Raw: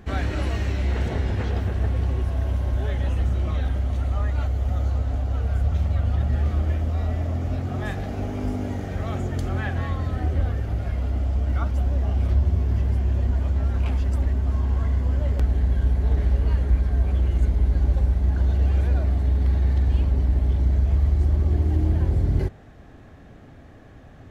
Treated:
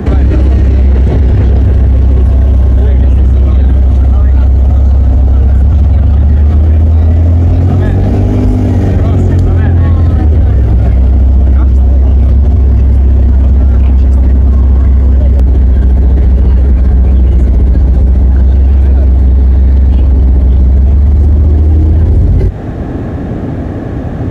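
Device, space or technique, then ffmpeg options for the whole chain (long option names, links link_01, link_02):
mastering chain: -filter_complex "[0:a]highpass=45,equalizer=frequency=320:width_type=o:width=1.2:gain=2.5,acrossover=split=96|540|1900[link_01][link_02][link_03][link_04];[link_01]acompressor=threshold=-24dB:ratio=4[link_05];[link_02]acompressor=threshold=-36dB:ratio=4[link_06];[link_03]acompressor=threshold=-47dB:ratio=4[link_07];[link_04]acompressor=threshold=-48dB:ratio=4[link_08];[link_05][link_06][link_07][link_08]amix=inputs=4:normalize=0,acompressor=threshold=-27dB:ratio=2.5,asoftclip=type=tanh:threshold=-23dB,tiltshelf=frequency=970:gain=6.5,asoftclip=type=hard:threshold=-20.5dB,alimiter=level_in=26dB:limit=-1dB:release=50:level=0:latency=1,volume=-1dB"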